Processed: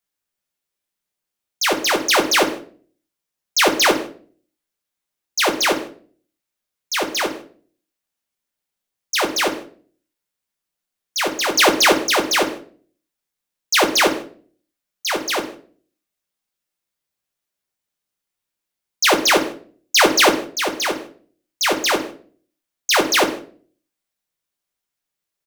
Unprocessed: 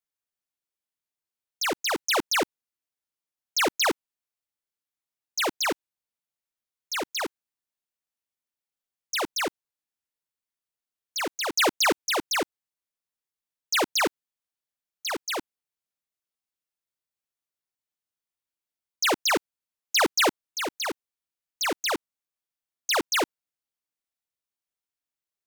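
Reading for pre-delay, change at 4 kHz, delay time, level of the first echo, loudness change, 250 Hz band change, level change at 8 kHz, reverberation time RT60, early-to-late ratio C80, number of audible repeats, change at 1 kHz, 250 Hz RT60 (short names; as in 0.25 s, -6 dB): 5 ms, +8.5 dB, 0.152 s, -22.5 dB, +8.5 dB, +9.5 dB, +8.5 dB, 0.45 s, 15.0 dB, 1, +8.5 dB, 0.65 s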